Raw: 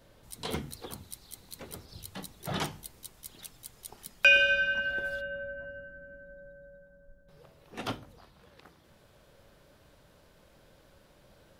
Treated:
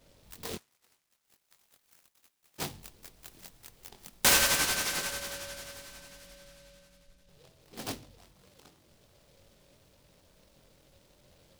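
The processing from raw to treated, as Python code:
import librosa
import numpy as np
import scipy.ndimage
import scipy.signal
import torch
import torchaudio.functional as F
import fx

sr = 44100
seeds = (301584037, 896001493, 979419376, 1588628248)

y = fx.bandpass_q(x, sr, hz=fx.line((0.54, 1800.0), (2.58, 7600.0)), q=12.0, at=(0.54, 2.58), fade=0.02)
y = fx.doubler(y, sr, ms=22.0, db=-5.0)
y = fx.noise_mod_delay(y, sr, seeds[0], noise_hz=3500.0, depth_ms=0.16)
y = F.gain(torch.from_numpy(y), -3.5).numpy()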